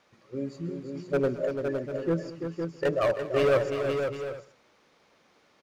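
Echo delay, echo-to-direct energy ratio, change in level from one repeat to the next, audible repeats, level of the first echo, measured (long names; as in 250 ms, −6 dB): 130 ms, −2.5 dB, repeats not evenly spaced, 8, −19.0 dB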